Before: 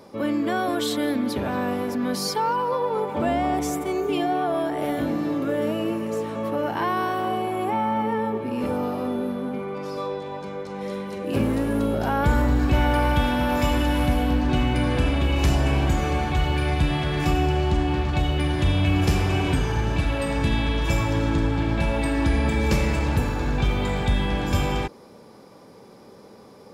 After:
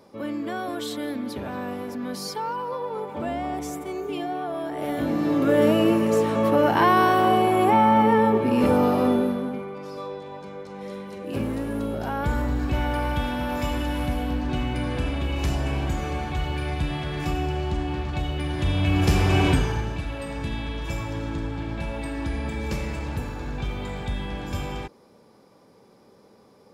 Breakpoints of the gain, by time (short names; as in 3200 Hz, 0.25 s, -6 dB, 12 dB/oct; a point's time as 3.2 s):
4.59 s -6 dB
5.6 s +6.5 dB
9.11 s +6.5 dB
9.74 s -5 dB
18.44 s -5 dB
19.46 s +4 dB
19.99 s -7.5 dB